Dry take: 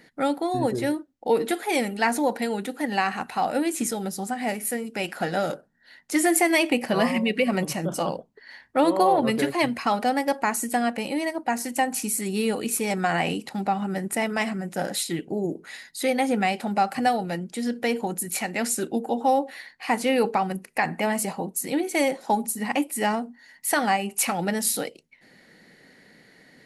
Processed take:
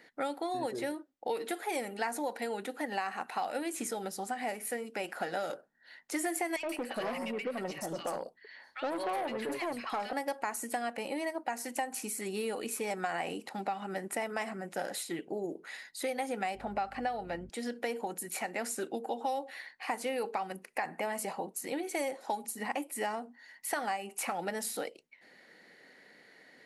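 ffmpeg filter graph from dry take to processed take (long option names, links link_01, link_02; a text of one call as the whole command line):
ffmpeg -i in.wav -filter_complex "[0:a]asettb=1/sr,asplit=3[link_01][link_02][link_03];[link_01]atrim=end=6.564[link_04];[link_02]atrim=start=6.56:end=10.13,asetpts=PTS-STARTPTS,afade=type=in:duration=0.004:curve=qsin,afade=type=out:start_time=3.566:duration=0.004:curve=qsin,acrossover=split=1600|5200[link_05][link_06][link_07];[link_05]adelay=70[link_08];[link_07]adelay=130[link_09];[link_08][link_06][link_09]amix=inputs=3:normalize=0,atrim=end_sample=157437,aeval=exprs='(tanh(10*val(0)+0.25)-tanh(0.25))/10':channel_layout=same[link_10];[link_03]atrim=start=10.126[link_11];[link_04][link_10]acrossfade=duration=0.004:curve1=hsin:curve2=qsin[link_12];[link_12][link_11]acrossfade=duration=0.004:curve1=qsin:curve2=hsin,asettb=1/sr,asplit=3[link_13][link_14][link_15];[link_13]atrim=end=16.554[link_16];[link_14]atrim=start=16.55:end=17.5,asetpts=PTS-STARTPTS,afade=type=in:duration=0.004:curve=qsin,afade=type=out:start_time=0.946:duration=0.004:curve=qsin,highshelf=frequency=4500:gain=-10.5,acrossover=split=5300[link_17][link_18];[link_18]acompressor=threshold=-59dB:ratio=4:attack=1:release=60[link_19];[link_17][link_19]amix=inputs=2:normalize=0,aeval=exprs='val(0)+0.02*(sin(2*PI*50*n/s)+sin(2*PI*2*50*n/s)/2+sin(2*PI*3*50*n/s)/3+sin(2*PI*4*50*n/s)/4+sin(2*PI*5*50*n/s)/5)':channel_layout=same[link_20];[link_15]atrim=start=17.496[link_21];[link_16][link_20]acrossfade=duration=0.004:curve1=hsin:curve2=qsin[link_22];[link_22][link_21]acrossfade=duration=0.004:curve1=qsin:curve2=hsin,bass=frequency=250:gain=-15,treble=frequency=4000:gain=-2,acrossover=split=1900|6100[link_23][link_24][link_25];[link_23]acompressor=threshold=-30dB:ratio=4[link_26];[link_24]acompressor=threshold=-44dB:ratio=4[link_27];[link_25]acompressor=threshold=-31dB:ratio=4[link_28];[link_26][link_27][link_28]amix=inputs=3:normalize=0,highshelf=frequency=5900:gain=-4.5,volume=-2.5dB" out.wav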